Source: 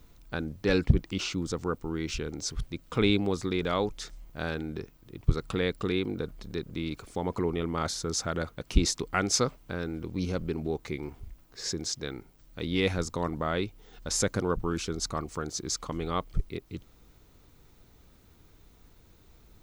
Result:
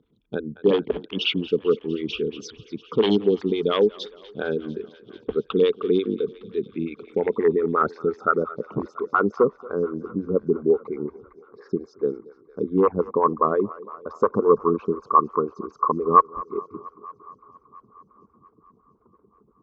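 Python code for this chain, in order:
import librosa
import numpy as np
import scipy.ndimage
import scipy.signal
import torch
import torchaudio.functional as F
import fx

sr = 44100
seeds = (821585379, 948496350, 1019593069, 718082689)

p1 = fx.envelope_sharpen(x, sr, power=2.0)
p2 = fx.rider(p1, sr, range_db=3, speed_s=2.0)
p3 = p1 + F.gain(torch.from_numpy(p2), 2.0).numpy()
p4 = 10.0 ** (-12.5 / 20.0) * (np.abs((p3 / 10.0 ** (-12.5 / 20.0) + 3.0) % 4.0 - 2.0) - 1.0)
p5 = fx.filter_sweep_lowpass(p4, sr, from_hz=3300.0, to_hz=1100.0, start_s=6.33, end_s=8.55, q=7.7)
p6 = fx.cabinet(p5, sr, low_hz=150.0, low_slope=12, high_hz=7000.0, hz=(210.0, 430.0, 660.0), db=(6, 10, -3))
p7 = p6 + fx.echo_thinned(p6, sr, ms=228, feedback_pct=81, hz=410.0, wet_db=-19.0, dry=0)
p8 = fx.stagger_phaser(p7, sr, hz=5.7)
y = F.gain(torch.from_numpy(p8), -2.0).numpy()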